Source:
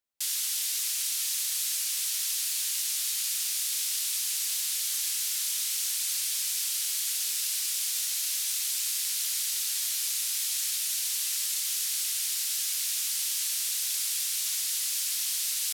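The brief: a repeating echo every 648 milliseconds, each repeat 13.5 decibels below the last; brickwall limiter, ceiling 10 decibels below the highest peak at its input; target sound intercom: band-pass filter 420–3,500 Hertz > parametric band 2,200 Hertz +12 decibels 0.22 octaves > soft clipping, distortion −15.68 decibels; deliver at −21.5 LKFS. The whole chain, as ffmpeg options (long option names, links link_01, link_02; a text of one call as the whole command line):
ffmpeg -i in.wav -af "alimiter=level_in=2dB:limit=-24dB:level=0:latency=1,volume=-2dB,highpass=420,lowpass=3500,equalizer=frequency=2200:width_type=o:width=0.22:gain=12,aecho=1:1:648|1296:0.211|0.0444,asoftclip=threshold=-40dB,volume=22dB" out.wav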